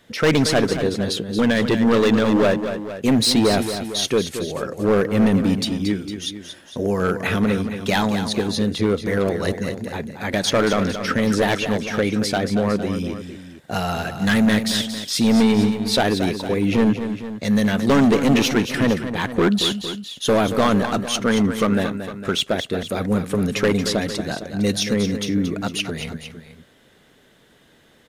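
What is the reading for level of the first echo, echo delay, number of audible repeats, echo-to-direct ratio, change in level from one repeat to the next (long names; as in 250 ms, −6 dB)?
−9.5 dB, 228 ms, 2, −8.0 dB, −4.5 dB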